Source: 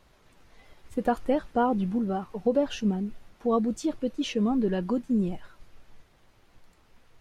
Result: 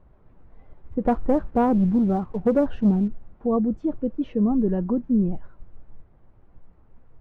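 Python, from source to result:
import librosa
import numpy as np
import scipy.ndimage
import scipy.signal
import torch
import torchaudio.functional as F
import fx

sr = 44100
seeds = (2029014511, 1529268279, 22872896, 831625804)

y = scipy.signal.sosfilt(scipy.signal.butter(2, 1100.0, 'lowpass', fs=sr, output='sos'), x)
y = fx.low_shelf(y, sr, hz=220.0, db=9.5)
y = fx.leveller(y, sr, passes=1, at=(1.05, 3.08))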